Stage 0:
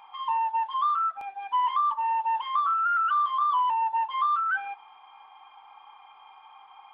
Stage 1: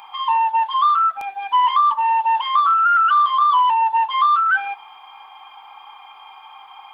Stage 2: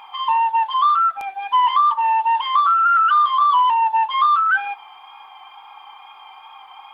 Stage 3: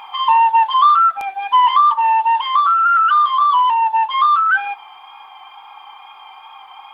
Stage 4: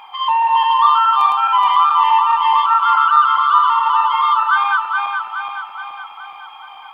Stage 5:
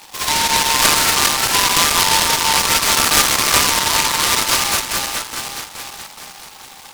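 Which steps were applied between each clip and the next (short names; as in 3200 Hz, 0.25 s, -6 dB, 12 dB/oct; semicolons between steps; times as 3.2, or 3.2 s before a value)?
high shelf 3600 Hz +12 dB; gain +8 dB
wow and flutter 23 cents
vocal rider 2 s; gain +2.5 dB
regenerating reverse delay 0.211 s, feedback 73%, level -1 dB; gain -3.5 dB
noise-modulated delay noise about 3500 Hz, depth 0.2 ms; gain -2 dB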